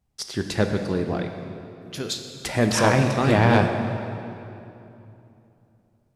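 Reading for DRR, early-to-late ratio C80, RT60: 5.0 dB, 7.0 dB, 2.9 s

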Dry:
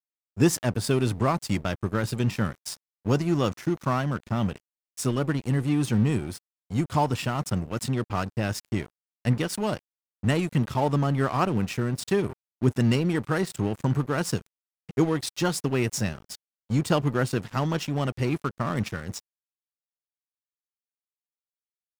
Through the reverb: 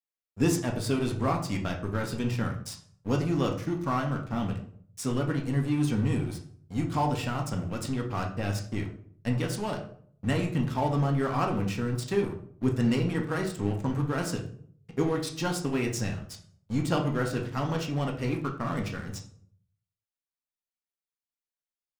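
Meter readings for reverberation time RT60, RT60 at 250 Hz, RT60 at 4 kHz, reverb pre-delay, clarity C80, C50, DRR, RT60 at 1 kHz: 0.60 s, 0.70 s, 0.35 s, 4 ms, 13.0 dB, 9.0 dB, 1.0 dB, 0.55 s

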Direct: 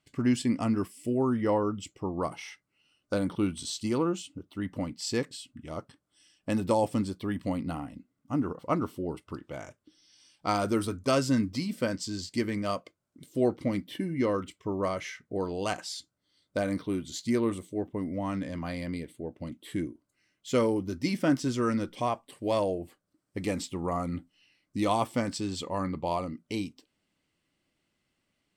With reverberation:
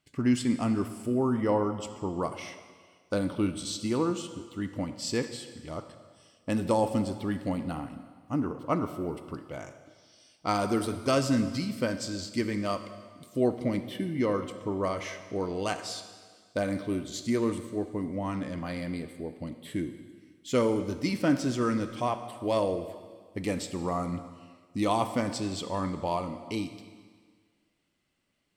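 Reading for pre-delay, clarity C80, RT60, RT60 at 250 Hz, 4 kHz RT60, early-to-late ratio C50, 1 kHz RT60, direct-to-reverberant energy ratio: 28 ms, 11.5 dB, 1.6 s, 1.7 s, 1.7 s, 10.0 dB, 1.7 s, 9.5 dB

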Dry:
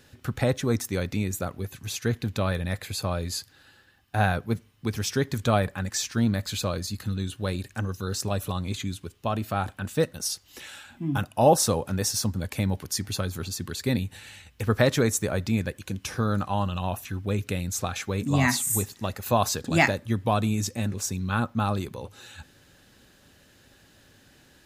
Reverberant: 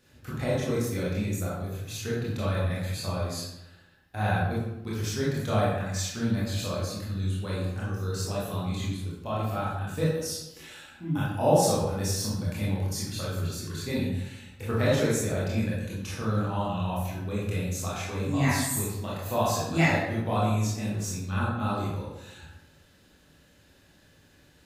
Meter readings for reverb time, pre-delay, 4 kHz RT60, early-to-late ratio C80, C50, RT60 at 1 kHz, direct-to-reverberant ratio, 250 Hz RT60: 0.90 s, 21 ms, 0.60 s, 3.5 dB, 0.0 dB, 0.85 s, -7.5 dB, 1.1 s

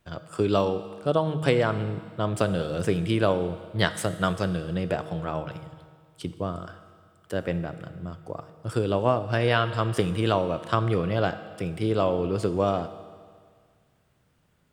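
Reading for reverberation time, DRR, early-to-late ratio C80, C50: 1.9 s, 11.0 dB, 13.5 dB, 12.5 dB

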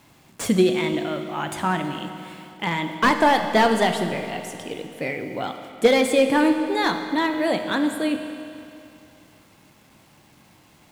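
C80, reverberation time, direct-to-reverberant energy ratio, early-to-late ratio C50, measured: 8.0 dB, 2.7 s, 6.0 dB, 7.0 dB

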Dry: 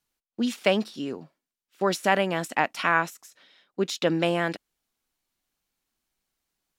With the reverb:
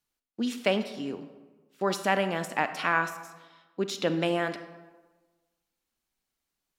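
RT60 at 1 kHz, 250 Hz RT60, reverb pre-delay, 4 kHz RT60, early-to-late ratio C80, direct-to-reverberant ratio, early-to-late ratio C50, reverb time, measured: 1.3 s, 1.3 s, 32 ms, 0.80 s, 12.5 dB, 10.0 dB, 11.0 dB, 1.3 s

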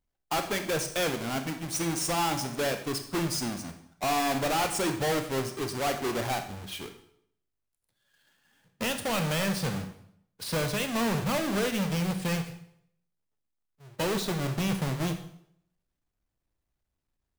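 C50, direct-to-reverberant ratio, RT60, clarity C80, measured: 9.5 dB, 6.5 dB, 0.70 s, 13.0 dB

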